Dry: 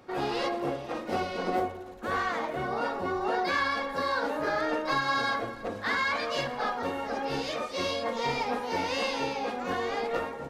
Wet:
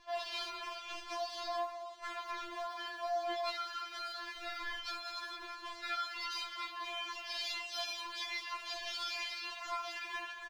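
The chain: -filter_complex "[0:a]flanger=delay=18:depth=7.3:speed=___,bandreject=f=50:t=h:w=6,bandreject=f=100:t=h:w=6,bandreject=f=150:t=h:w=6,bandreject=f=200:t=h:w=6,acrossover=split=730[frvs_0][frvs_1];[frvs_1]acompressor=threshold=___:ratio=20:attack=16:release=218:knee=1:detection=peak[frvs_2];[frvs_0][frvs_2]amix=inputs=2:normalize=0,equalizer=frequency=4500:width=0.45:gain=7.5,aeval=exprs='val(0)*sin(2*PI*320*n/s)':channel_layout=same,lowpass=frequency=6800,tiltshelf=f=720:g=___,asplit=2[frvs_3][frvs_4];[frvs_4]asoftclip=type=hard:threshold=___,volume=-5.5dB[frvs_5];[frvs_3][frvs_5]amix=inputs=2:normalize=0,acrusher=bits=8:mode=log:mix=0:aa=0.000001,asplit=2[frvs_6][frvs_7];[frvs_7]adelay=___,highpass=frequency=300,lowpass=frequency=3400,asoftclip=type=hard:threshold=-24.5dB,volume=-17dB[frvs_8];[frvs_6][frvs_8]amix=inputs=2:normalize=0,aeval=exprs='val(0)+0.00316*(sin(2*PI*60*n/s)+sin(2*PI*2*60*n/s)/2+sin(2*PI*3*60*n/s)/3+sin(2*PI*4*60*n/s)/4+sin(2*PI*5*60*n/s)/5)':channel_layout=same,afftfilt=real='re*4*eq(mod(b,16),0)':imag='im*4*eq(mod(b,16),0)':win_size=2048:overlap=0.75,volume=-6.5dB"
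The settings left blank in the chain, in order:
0.61, -40dB, -8.5, -31.5dB, 230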